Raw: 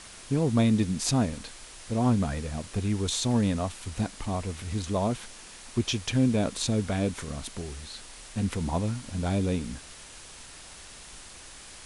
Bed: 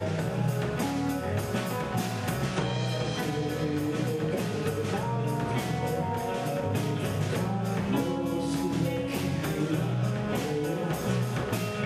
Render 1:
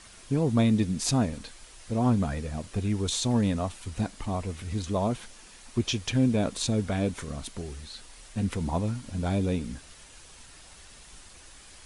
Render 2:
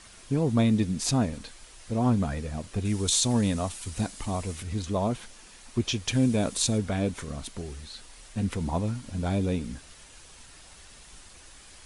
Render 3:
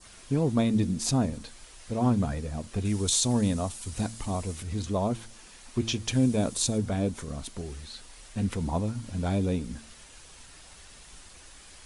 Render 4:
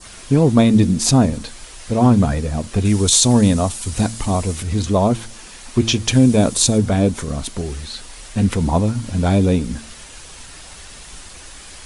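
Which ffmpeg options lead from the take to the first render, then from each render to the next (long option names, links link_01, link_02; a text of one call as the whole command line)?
ffmpeg -i in.wav -af "afftdn=noise_reduction=6:noise_floor=-47" out.wav
ffmpeg -i in.wav -filter_complex "[0:a]asettb=1/sr,asplit=3[link_01][link_02][link_03];[link_01]atrim=end=2.854[link_04];[link_02]atrim=start=2.85:end=4.63,asetpts=PTS-STARTPTS,afade=type=in:duration=0.004:curve=qsin,afade=type=out:start_time=1.776:duration=0.004:curve=qsin,highshelf=frequency=4900:gain=10.5[link_05];[link_03]atrim=start=4.626[link_06];[link_04][link_05]acrossfade=duration=0.004:curve1=hsin:curve2=qsin[link_07];[link_07][link_06]acrossfade=duration=0.004:curve1=qsin:curve2=hsin,asettb=1/sr,asplit=3[link_08][link_09][link_10];[link_08]atrim=end=6.084[link_11];[link_09]atrim=start=6.08:end=6.78,asetpts=PTS-STARTPTS,afade=type=in:duration=0.004:curve=qsin,afade=type=out:start_time=0.696:duration=0.004:curve=qsin,highshelf=frequency=6200:gain=10.5[link_12];[link_10]atrim=start=6.776[link_13];[link_11][link_12]acrossfade=duration=0.004:curve1=hsin:curve2=qsin[link_14];[link_14][link_13]acrossfade=duration=0.004:curve1=qsin:curve2=hsin" out.wav
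ffmpeg -i in.wav -af "bandreject=frequency=112.6:width_type=h:width=4,bandreject=frequency=225.2:width_type=h:width=4,bandreject=frequency=337.8:width_type=h:width=4,adynamicequalizer=threshold=0.00398:dfrequency=2200:dqfactor=0.75:tfrequency=2200:tqfactor=0.75:attack=5:release=100:ratio=0.375:range=3:mode=cutabove:tftype=bell" out.wav
ffmpeg -i in.wav -af "volume=12dB,alimiter=limit=-2dB:level=0:latency=1" out.wav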